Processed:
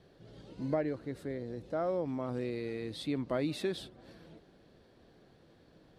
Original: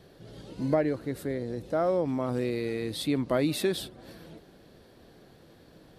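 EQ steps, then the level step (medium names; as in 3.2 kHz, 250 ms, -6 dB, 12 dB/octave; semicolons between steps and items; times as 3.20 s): distance through air 53 m; -6.5 dB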